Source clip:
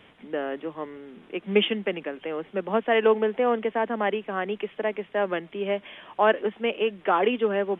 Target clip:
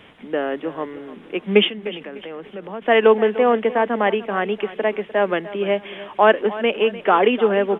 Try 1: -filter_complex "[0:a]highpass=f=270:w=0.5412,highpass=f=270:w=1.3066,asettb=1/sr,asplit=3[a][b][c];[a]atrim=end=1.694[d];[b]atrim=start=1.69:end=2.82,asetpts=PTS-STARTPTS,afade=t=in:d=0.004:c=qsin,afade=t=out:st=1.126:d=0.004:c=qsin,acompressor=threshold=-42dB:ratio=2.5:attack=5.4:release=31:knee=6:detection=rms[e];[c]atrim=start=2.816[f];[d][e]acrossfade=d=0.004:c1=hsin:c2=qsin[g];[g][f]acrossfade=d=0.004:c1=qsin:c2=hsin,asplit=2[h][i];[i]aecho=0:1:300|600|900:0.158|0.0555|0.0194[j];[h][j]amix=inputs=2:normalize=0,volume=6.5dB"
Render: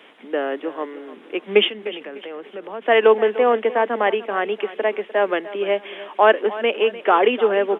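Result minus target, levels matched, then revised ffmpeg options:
250 Hz band -5.0 dB
-filter_complex "[0:a]asettb=1/sr,asplit=3[a][b][c];[a]atrim=end=1.694[d];[b]atrim=start=1.69:end=2.82,asetpts=PTS-STARTPTS,afade=t=in:d=0.004:c=qsin,afade=t=out:st=1.126:d=0.004:c=qsin,acompressor=threshold=-42dB:ratio=2.5:attack=5.4:release=31:knee=6:detection=rms[e];[c]atrim=start=2.816[f];[d][e]acrossfade=d=0.004:c1=hsin:c2=qsin[g];[g][f]acrossfade=d=0.004:c1=qsin:c2=hsin,asplit=2[h][i];[i]aecho=0:1:300|600|900:0.158|0.0555|0.0194[j];[h][j]amix=inputs=2:normalize=0,volume=6.5dB"

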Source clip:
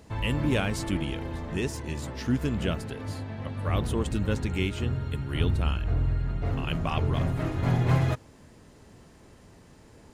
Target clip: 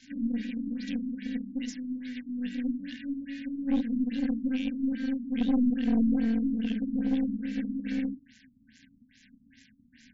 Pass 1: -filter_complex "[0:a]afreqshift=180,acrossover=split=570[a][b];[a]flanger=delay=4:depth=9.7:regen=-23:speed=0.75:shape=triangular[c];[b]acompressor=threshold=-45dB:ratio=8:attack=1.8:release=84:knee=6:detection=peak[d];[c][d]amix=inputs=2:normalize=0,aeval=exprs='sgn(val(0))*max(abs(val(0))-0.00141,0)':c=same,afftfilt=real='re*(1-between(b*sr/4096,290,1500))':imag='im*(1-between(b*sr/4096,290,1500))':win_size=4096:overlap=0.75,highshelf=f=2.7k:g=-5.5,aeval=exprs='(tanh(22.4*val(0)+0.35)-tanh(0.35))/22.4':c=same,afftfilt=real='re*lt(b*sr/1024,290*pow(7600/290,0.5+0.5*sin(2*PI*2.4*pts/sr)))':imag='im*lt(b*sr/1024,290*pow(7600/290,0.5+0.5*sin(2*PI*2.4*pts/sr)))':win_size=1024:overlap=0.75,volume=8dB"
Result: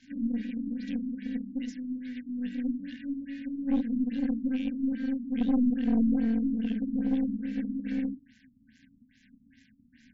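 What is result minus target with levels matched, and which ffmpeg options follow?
4000 Hz band -6.0 dB
-filter_complex "[0:a]afreqshift=180,acrossover=split=570[a][b];[a]flanger=delay=4:depth=9.7:regen=-23:speed=0.75:shape=triangular[c];[b]acompressor=threshold=-45dB:ratio=8:attack=1.8:release=84:knee=6:detection=peak[d];[c][d]amix=inputs=2:normalize=0,aeval=exprs='sgn(val(0))*max(abs(val(0))-0.00141,0)':c=same,afftfilt=real='re*(1-between(b*sr/4096,290,1500))':imag='im*(1-between(b*sr/4096,290,1500))':win_size=4096:overlap=0.75,highshelf=f=2.7k:g=4.5,aeval=exprs='(tanh(22.4*val(0)+0.35)-tanh(0.35))/22.4':c=same,afftfilt=real='re*lt(b*sr/1024,290*pow(7600/290,0.5+0.5*sin(2*PI*2.4*pts/sr)))':imag='im*lt(b*sr/1024,290*pow(7600/290,0.5+0.5*sin(2*PI*2.4*pts/sr)))':win_size=1024:overlap=0.75,volume=8dB"

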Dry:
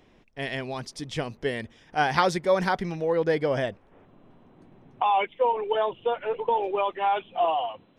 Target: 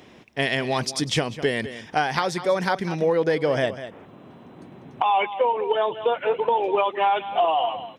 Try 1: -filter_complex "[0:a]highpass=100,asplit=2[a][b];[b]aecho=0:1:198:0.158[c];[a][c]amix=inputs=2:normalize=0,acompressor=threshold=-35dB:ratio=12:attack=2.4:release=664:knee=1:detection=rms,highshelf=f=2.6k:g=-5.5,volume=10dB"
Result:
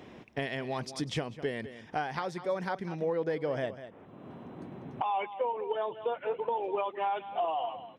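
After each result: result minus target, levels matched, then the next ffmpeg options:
compressor: peak gain reduction +9.5 dB; 4000 Hz band -4.0 dB
-filter_complex "[0:a]highpass=100,asplit=2[a][b];[b]aecho=0:1:198:0.158[c];[a][c]amix=inputs=2:normalize=0,acompressor=threshold=-24.5dB:ratio=12:attack=2.4:release=664:knee=1:detection=rms,highshelf=f=2.6k:g=-5.5,volume=10dB"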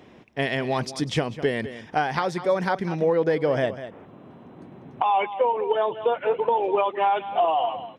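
4000 Hz band -5.0 dB
-filter_complex "[0:a]highpass=100,asplit=2[a][b];[b]aecho=0:1:198:0.158[c];[a][c]amix=inputs=2:normalize=0,acompressor=threshold=-24.5dB:ratio=12:attack=2.4:release=664:knee=1:detection=rms,highshelf=f=2.6k:g=3.5,volume=10dB"

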